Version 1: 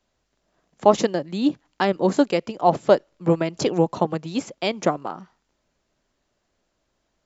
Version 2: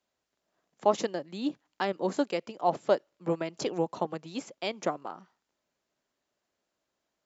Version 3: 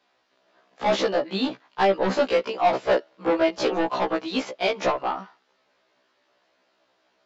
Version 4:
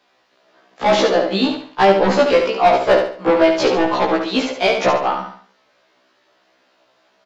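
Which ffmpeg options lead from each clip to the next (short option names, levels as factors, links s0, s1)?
-af "highpass=f=270:p=1,volume=0.398"
-filter_complex "[0:a]asplit=2[s0][s1];[s1]highpass=f=720:p=1,volume=22.4,asoftclip=type=tanh:threshold=0.316[s2];[s0][s2]amix=inputs=2:normalize=0,lowpass=f=1600:p=1,volume=0.501,lowpass=f=4600:t=q:w=1.5,afftfilt=real='re*1.73*eq(mod(b,3),0)':imag='im*1.73*eq(mod(b,3),0)':win_size=2048:overlap=0.75,volume=1.19"
-filter_complex "[0:a]aeval=exprs='0.355*(cos(1*acos(clip(val(0)/0.355,-1,1)))-cos(1*PI/2))+0.0316*(cos(4*acos(clip(val(0)/0.355,-1,1)))-cos(4*PI/2))+0.0158*(cos(6*acos(clip(val(0)/0.355,-1,1)))-cos(6*PI/2))':c=same,asplit=2[s0][s1];[s1]aecho=0:1:71|142|213|284:0.501|0.18|0.065|0.0234[s2];[s0][s2]amix=inputs=2:normalize=0,volume=2.24"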